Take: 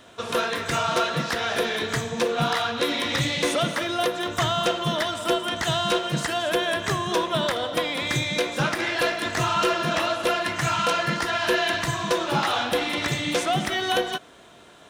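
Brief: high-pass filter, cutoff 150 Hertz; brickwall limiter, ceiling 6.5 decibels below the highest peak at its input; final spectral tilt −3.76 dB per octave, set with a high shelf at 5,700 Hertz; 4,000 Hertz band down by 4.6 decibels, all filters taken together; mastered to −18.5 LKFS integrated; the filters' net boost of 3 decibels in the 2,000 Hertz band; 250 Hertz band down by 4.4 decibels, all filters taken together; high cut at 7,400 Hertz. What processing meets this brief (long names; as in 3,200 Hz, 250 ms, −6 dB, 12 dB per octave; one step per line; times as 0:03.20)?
high-pass filter 150 Hz
low-pass filter 7,400 Hz
parametric band 250 Hz −6 dB
parametric band 2,000 Hz +6 dB
parametric band 4,000 Hz −6 dB
high-shelf EQ 5,700 Hz −7 dB
level +8 dB
brickwall limiter −9.5 dBFS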